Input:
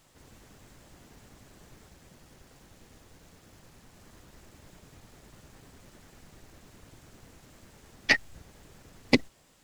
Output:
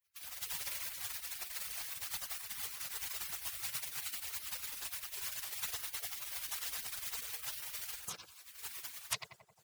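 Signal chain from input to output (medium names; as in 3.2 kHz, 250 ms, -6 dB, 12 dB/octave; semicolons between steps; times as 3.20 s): harmonic-percussive separation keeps percussive; level rider gain up to 15 dB; gate with hold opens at -49 dBFS; on a send: filtered feedback delay 89 ms, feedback 34%, low-pass 1.3 kHz, level -7 dB; on the sum: compression 10:1, threshold -44 dBFS, peak gain reduction 32.5 dB; treble shelf 7.7 kHz +7.5 dB; in parallel at -4.5 dB: saturation -38 dBFS, distortion -18 dB; on the sum: high-pass 240 Hz 12 dB/octave; peaking EQ 2.1 kHz -6 dB 0.74 oct; spectral gate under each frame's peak -20 dB weak; trim +16 dB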